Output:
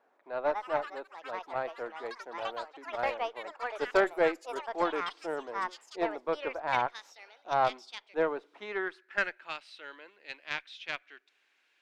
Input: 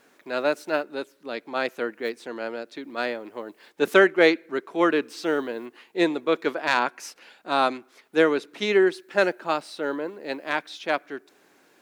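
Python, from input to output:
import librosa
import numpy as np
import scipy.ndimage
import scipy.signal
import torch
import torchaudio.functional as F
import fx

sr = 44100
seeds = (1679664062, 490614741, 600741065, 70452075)

y = fx.filter_sweep_bandpass(x, sr, from_hz=780.0, to_hz=2700.0, start_s=8.43, end_s=9.55, q=1.9)
y = fx.echo_pitch(y, sr, ms=237, semitones=6, count=3, db_per_echo=-6.0)
y = fx.cheby_harmonics(y, sr, harmonics=(3, 4), levels_db=(-19, -26), full_scale_db=-12.0)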